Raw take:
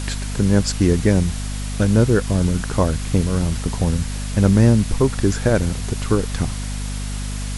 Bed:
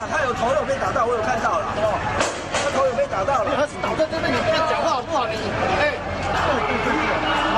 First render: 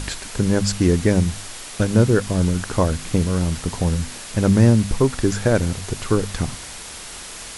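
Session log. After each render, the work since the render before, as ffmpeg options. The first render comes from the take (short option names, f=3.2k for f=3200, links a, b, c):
-af "bandreject=f=50:t=h:w=4,bandreject=f=100:t=h:w=4,bandreject=f=150:t=h:w=4,bandreject=f=200:t=h:w=4,bandreject=f=250:t=h:w=4"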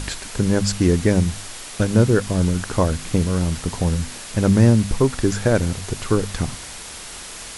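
-af anull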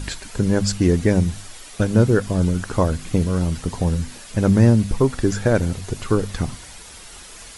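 -af "afftdn=nr=8:nf=-36"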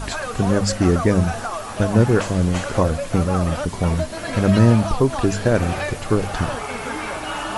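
-filter_complex "[1:a]volume=-7dB[a];[0:a][a]amix=inputs=2:normalize=0"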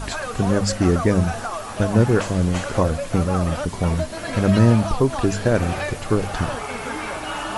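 -af "volume=-1dB"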